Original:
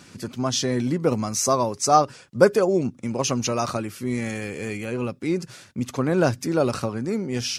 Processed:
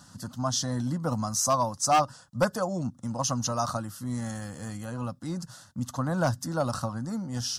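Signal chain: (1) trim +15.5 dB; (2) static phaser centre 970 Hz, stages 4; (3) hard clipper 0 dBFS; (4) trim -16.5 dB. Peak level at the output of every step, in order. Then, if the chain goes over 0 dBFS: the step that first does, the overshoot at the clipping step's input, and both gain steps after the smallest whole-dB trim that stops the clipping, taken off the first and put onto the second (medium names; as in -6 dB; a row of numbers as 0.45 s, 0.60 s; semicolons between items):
+12.0 dBFS, +9.5 dBFS, 0.0 dBFS, -16.5 dBFS; step 1, 9.5 dB; step 1 +5.5 dB, step 4 -6.5 dB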